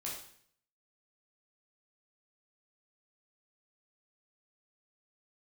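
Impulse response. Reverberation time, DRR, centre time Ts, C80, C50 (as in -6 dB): 0.60 s, -5.0 dB, 42 ms, 7.5 dB, 3.5 dB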